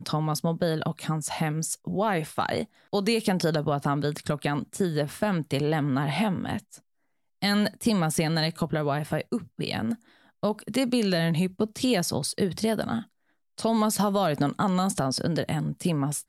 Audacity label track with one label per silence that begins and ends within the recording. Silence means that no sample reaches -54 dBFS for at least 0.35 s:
6.800000	7.420000	silence
13.110000	13.580000	silence